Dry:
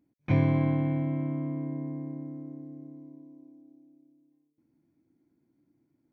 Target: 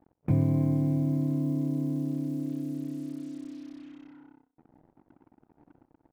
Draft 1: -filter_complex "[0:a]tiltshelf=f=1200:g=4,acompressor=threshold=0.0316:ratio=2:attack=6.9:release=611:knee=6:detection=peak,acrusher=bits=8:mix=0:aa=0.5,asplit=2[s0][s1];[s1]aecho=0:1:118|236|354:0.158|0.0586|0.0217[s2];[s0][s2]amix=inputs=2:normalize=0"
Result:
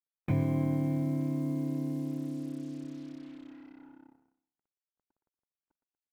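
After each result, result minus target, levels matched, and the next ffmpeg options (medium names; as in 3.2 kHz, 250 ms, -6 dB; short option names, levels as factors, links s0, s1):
echo 53 ms late; 1 kHz band +5.0 dB
-filter_complex "[0:a]tiltshelf=f=1200:g=4,acompressor=threshold=0.0316:ratio=2:attack=6.9:release=611:knee=6:detection=peak,acrusher=bits=8:mix=0:aa=0.5,asplit=2[s0][s1];[s1]aecho=0:1:65|130|195:0.158|0.0586|0.0217[s2];[s0][s2]amix=inputs=2:normalize=0"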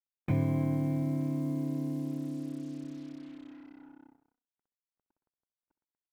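1 kHz band +5.0 dB
-filter_complex "[0:a]tiltshelf=f=1200:g=13,acompressor=threshold=0.0316:ratio=2:attack=6.9:release=611:knee=6:detection=peak,acrusher=bits=8:mix=0:aa=0.5,asplit=2[s0][s1];[s1]aecho=0:1:65|130|195:0.158|0.0586|0.0217[s2];[s0][s2]amix=inputs=2:normalize=0"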